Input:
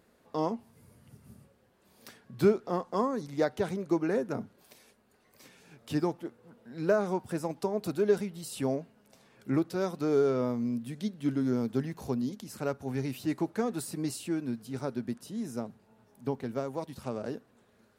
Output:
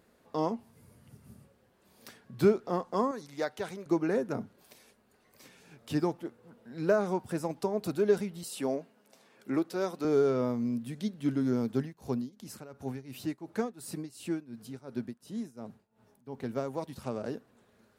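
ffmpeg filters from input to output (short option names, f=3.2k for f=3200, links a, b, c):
-filter_complex "[0:a]asettb=1/sr,asplit=3[a][b][c];[a]atrim=end=3.114[d];[b]atrim=start=3.11:end=3.86,asetpts=PTS-STARTPTS,afade=t=in:d=0.004:c=qsin,afade=t=out:st=0.746:d=0.004:c=qsin,lowshelf=f=500:g=-11[e];[c]atrim=start=3.856[f];[d][e]acrossfade=d=0.004:c1=hsin:c2=qsin[g];[g][f]acrossfade=d=0.004:c1=qsin:c2=hsin,asettb=1/sr,asplit=3[h][i][j];[h]atrim=end=8.434[k];[i]atrim=start=8.43:end=10.05,asetpts=PTS-STARTPTS,afade=t=in:d=0.004:c=qsin,afade=t=out:st=1.616:d=0.004:c=qsin,highpass=240[l];[j]atrim=start=10.046[m];[k][l]acrossfade=d=0.004:c1=hsin:c2=qsin[n];[n][m]acrossfade=d=0.004:c1=qsin:c2=hsin,asplit=3[o][p][q];[o]afade=t=out:st=11.72:d=0.02[r];[p]tremolo=f=2.8:d=0.89,afade=t=in:st=11.72:d=0.02,afade=t=out:st=16.43:d=0.02[s];[q]afade=t=in:st=16.43:d=0.02[t];[r][s][t]amix=inputs=3:normalize=0"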